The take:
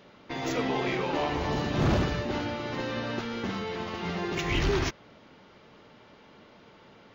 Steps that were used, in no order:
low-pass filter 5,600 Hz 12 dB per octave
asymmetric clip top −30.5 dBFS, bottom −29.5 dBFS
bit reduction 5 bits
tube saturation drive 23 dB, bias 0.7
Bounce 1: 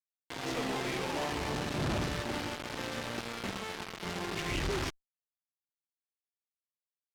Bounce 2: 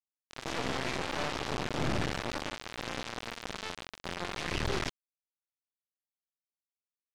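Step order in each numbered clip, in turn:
bit reduction, then tube saturation, then low-pass filter, then asymmetric clip
tube saturation, then asymmetric clip, then bit reduction, then low-pass filter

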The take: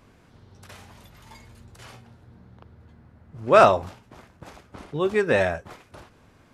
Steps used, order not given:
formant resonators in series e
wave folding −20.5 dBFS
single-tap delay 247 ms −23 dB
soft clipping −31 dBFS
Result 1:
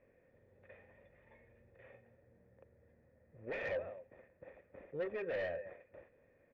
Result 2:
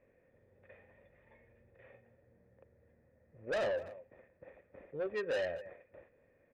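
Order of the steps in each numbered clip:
single-tap delay, then wave folding, then formant resonators in series, then soft clipping
formant resonators in series, then wave folding, then single-tap delay, then soft clipping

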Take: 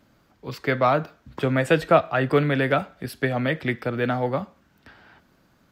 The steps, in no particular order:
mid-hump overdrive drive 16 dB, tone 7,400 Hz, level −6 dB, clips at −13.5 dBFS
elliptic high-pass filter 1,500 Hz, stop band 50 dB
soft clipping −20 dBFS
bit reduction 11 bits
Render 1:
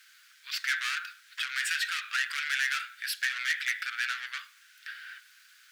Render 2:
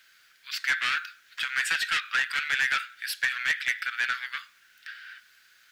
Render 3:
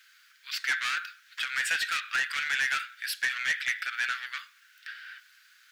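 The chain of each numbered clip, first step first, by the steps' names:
bit reduction, then mid-hump overdrive, then soft clipping, then elliptic high-pass filter
soft clipping, then elliptic high-pass filter, then mid-hump overdrive, then bit reduction
mid-hump overdrive, then bit reduction, then elliptic high-pass filter, then soft clipping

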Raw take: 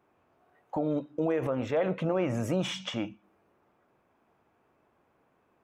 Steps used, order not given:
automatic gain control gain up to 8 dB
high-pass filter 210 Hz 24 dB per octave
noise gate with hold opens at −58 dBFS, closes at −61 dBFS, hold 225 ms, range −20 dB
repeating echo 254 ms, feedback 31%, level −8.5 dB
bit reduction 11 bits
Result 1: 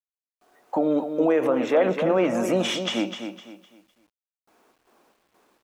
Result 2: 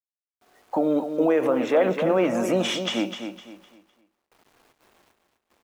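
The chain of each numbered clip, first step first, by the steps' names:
high-pass filter, then noise gate with hold, then automatic gain control, then repeating echo, then bit reduction
noise gate with hold, then high-pass filter, then bit reduction, then automatic gain control, then repeating echo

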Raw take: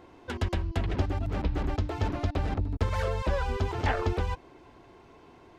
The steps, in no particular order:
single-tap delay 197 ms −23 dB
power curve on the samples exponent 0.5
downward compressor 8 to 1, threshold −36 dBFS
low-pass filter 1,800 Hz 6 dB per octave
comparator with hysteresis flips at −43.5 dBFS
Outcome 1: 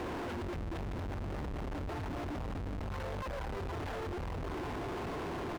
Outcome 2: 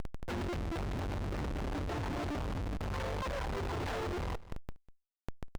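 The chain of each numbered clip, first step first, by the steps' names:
single-tap delay, then power curve on the samples, then downward compressor, then comparator with hysteresis, then low-pass filter
comparator with hysteresis, then low-pass filter, then power curve on the samples, then single-tap delay, then downward compressor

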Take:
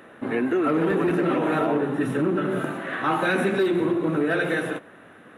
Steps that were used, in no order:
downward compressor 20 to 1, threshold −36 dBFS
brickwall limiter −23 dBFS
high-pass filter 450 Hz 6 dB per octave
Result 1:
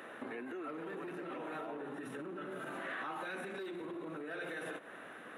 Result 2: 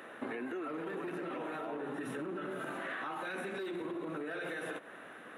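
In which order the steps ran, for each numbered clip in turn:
brickwall limiter, then downward compressor, then high-pass filter
high-pass filter, then brickwall limiter, then downward compressor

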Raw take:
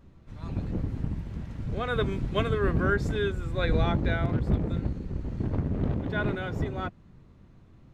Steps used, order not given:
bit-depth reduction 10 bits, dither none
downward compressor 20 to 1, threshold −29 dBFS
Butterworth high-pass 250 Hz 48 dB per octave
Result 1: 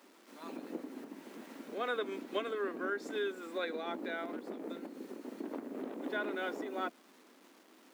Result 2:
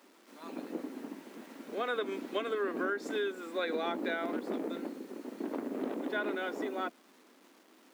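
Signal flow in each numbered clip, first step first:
bit-depth reduction, then downward compressor, then Butterworth high-pass
bit-depth reduction, then Butterworth high-pass, then downward compressor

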